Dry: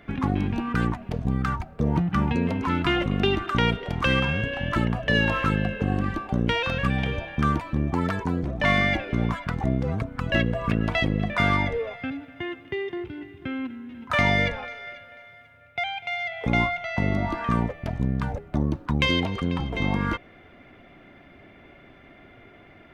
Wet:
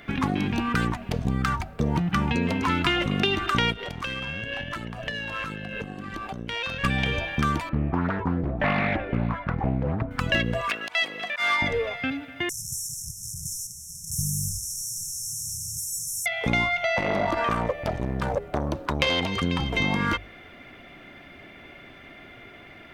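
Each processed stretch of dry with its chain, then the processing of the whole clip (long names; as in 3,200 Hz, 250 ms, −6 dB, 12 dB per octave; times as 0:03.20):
0:03.72–0:06.84: downward compressor 12 to 1, threshold −30 dBFS + amplitude modulation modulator 110 Hz, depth 25%
0:07.69–0:10.11: low-pass filter 1,300 Hz + highs frequency-modulated by the lows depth 0.54 ms
0:10.61–0:11.62: high-pass filter 770 Hz + volume swells 151 ms
0:12.49–0:16.26: linear delta modulator 64 kbit/s, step −28 dBFS + linear-phase brick-wall band-stop 180–5,300 Hz
0:16.83–0:19.22: parametric band 550 Hz +11.5 dB 0.88 octaves + saturating transformer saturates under 710 Hz
whole clip: high-shelf EQ 2,000 Hz +10.5 dB; mains-hum notches 50/100 Hz; downward compressor, threshold −21 dBFS; level +1.5 dB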